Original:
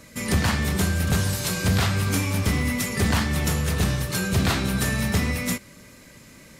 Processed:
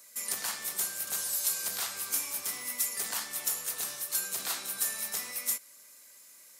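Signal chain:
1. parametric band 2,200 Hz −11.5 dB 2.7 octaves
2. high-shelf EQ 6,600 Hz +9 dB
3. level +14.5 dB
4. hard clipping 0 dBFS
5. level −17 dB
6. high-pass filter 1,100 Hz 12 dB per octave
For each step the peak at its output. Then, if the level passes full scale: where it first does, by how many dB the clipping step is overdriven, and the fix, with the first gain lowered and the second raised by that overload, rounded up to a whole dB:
−13.0, −10.5, +4.0, 0.0, −17.0, −15.5 dBFS
step 3, 4.0 dB
step 3 +10.5 dB, step 5 −13 dB

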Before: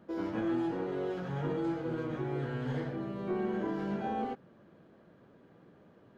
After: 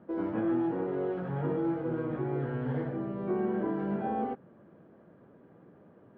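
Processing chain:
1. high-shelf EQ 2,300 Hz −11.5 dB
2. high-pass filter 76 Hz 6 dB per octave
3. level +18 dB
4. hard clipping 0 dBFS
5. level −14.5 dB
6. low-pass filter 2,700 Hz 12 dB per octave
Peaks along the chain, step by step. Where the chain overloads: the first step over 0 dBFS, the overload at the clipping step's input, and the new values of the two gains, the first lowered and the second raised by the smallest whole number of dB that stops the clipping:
−24.0, −23.0, −5.0, −5.0, −19.5, −19.5 dBFS
no step passes full scale

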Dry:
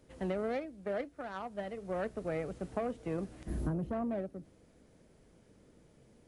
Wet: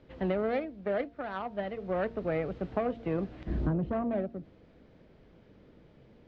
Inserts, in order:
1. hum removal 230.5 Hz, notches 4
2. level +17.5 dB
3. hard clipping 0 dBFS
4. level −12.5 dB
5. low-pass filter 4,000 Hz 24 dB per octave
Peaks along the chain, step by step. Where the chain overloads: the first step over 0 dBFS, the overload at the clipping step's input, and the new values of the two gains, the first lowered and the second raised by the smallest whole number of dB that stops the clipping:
−21.0, −3.5, −3.5, −16.0, −16.0 dBFS
no step passes full scale

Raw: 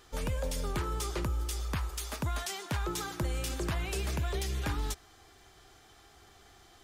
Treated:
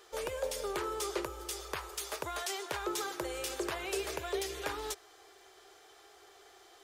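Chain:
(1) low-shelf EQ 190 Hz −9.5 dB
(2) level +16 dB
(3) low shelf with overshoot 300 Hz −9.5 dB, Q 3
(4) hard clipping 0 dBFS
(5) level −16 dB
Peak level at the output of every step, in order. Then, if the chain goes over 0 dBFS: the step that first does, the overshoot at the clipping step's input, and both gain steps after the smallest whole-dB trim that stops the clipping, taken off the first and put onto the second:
−23.0, −7.0, −4.5, −4.5, −20.5 dBFS
no step passes full scale

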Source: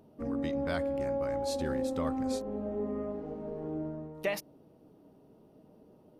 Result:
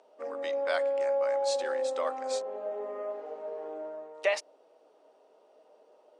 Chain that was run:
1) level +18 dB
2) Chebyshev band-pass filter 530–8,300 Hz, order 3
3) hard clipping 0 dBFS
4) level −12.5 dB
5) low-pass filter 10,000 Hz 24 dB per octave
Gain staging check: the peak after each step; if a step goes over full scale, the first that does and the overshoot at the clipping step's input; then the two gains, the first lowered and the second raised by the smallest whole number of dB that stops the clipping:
−0.5, −2.5, −2.5, −15.0, −15.0 dBFS
no step passes full scale

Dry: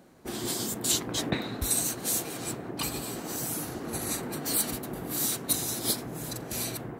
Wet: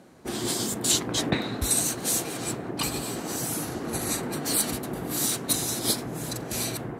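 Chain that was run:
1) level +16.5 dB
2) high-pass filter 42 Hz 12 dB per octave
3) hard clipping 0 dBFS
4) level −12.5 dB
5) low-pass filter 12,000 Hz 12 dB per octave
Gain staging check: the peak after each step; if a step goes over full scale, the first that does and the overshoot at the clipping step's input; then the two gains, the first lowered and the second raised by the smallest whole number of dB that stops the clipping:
+7.5, +7.5, 0.0, −12.5, −11.5 dBFS
step 1, 7.5 dB
step 1 +8.5 dB, step 4 −4.5 dB

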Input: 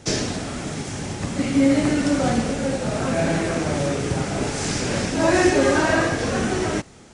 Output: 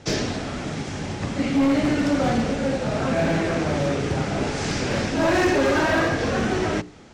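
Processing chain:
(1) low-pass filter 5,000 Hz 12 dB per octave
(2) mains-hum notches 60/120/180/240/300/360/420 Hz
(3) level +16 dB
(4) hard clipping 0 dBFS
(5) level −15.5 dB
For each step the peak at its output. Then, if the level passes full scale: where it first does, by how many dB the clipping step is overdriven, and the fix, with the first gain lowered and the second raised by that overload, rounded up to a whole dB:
−6.0, −6.5, +9.5, 0.0, −15.5 dBFS
step 3, 9.5 dB
step 3 +6 dB, step 5 −5.5 dB

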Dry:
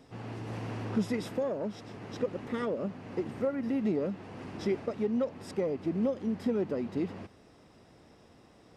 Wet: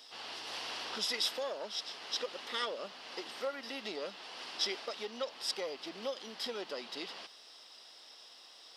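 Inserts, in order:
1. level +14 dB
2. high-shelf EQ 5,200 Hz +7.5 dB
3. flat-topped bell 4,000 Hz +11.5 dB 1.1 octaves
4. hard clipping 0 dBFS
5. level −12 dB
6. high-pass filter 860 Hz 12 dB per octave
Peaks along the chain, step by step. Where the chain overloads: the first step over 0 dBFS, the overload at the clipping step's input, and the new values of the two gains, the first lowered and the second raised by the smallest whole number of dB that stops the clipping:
−4.5, −4.5, −4.5, −4.5, −16.5, −19.0 dBFS
no step passes full scale

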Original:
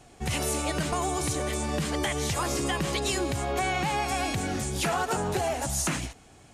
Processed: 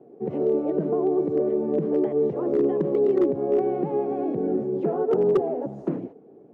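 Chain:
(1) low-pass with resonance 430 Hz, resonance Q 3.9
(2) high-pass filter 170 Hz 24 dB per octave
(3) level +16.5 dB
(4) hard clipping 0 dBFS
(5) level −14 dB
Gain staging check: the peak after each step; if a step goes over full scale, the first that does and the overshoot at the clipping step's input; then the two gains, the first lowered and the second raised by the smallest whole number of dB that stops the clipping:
−10.5, −11.0, +5.5, 0.0, −14.0 dBFS
step 3, 5.5 dB
step 3 +10.5 dB, step 5 −8 dB

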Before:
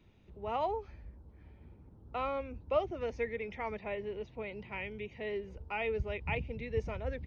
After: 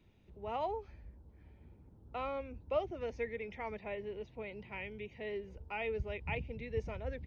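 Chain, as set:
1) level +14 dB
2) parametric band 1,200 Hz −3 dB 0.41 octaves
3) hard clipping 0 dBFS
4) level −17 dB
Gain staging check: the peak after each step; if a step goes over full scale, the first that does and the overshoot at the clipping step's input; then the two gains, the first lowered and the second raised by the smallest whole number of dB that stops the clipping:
−5.0, −5.5, −5.5, −22.5 dBFS
no step passes full scale

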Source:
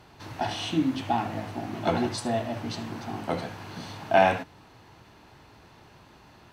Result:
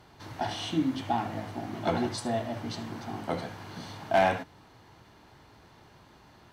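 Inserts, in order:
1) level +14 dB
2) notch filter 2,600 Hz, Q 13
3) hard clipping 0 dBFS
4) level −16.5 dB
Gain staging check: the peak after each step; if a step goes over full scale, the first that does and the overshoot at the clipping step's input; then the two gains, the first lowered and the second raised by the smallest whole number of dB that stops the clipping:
+7.0, +7.0, 0.0, −16.5 dBFS
step 1, 7.0 dB
step 1 +7 dB, step 4 −9.5 dB

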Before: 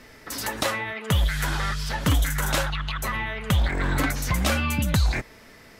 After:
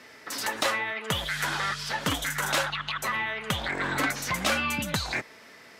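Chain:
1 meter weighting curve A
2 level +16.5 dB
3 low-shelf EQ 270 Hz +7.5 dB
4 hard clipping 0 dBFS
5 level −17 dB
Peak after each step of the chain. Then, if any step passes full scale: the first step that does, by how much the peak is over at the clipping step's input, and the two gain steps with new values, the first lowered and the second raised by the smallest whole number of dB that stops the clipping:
−9.0, +7.5, +7.5, 0.0, −17.0 dBFS
step 2, 7.5 dB
step 2 +8.5 dB, step 5 −9 dB

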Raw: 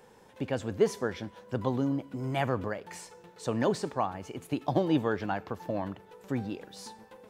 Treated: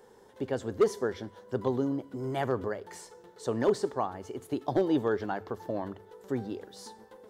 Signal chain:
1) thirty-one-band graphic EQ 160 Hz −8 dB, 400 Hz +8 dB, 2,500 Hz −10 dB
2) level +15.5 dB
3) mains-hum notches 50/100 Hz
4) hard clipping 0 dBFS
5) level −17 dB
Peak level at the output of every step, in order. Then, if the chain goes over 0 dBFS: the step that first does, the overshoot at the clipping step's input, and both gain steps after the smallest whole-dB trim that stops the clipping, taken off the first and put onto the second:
−7.5, +8.0, +8.0, 0.0, −17.0 dBFS
step 2, 8.0 dB
step 2 +7.5 dB, step 5 −9 dB

